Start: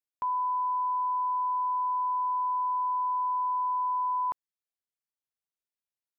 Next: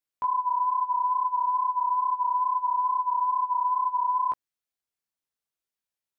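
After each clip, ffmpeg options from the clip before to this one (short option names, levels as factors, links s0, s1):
-af "flanger=delay=15.5:depth=4.8:speed=2.3,volume=2"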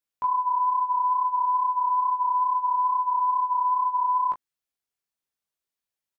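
-filter_complex "[0:a]asplit=2[s0][s1];[s1]adelay=21,volume=0.376[s2];[s0][s2]amix=inputs=2:normalize=0"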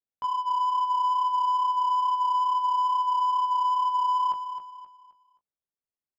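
-filter_complex "[0:a]adynamicsmooth=sensitivity=3:basefreq=1000,asplit=2[s0][s1];[s1]aecho=0:1:263|526|789|1052:0.335|0.117|0.041|0.0144[s2];[s0][s2]amix=inputs=2:normalize=0,volume=0.668"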